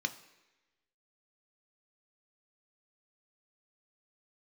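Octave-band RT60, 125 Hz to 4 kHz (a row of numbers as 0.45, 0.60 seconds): 0.85, 1.0, 1.1, 1.0, 1.2, 1.1 seconds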